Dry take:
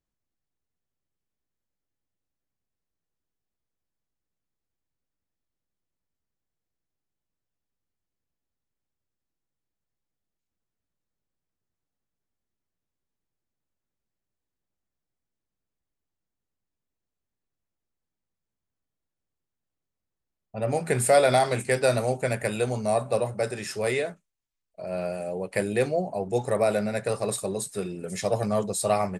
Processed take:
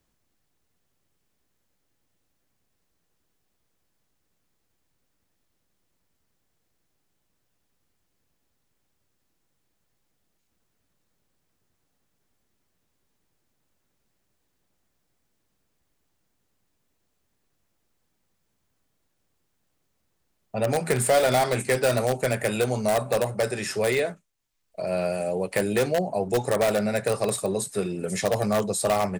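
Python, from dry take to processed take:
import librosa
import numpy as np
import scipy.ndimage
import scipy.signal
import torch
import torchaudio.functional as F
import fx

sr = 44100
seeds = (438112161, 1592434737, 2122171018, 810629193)

p1 = fx.low_shelf(x, sr, hz=95.0, db=-4.0)
p2 = (np.mod(10.0 ** (17.5 / 20.0) * p1 + 1.0, 2.0) - 1.0) / 10.0 ** (17.5 / 20.0)
p3 = p1 + (p2 * 10.0 ** (-8.5 / 20.0))
y = fx.band_squash(p3, sr, depth_pct=40)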